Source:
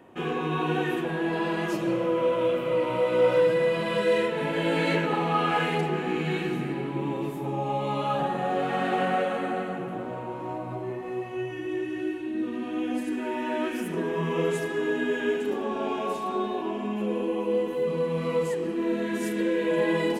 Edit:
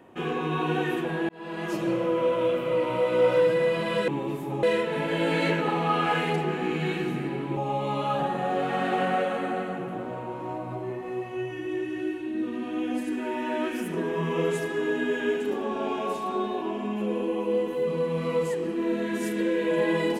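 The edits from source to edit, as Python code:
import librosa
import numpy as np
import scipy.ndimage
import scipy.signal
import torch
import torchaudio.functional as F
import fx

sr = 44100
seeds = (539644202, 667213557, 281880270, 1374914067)

y = fx.edit(x, sr, fx.fade_in_span(start_s=1.29, length_s=0.51),
    fx.move(start_s=7.02, length_s=0.55, to_s=4.08), tone=tone)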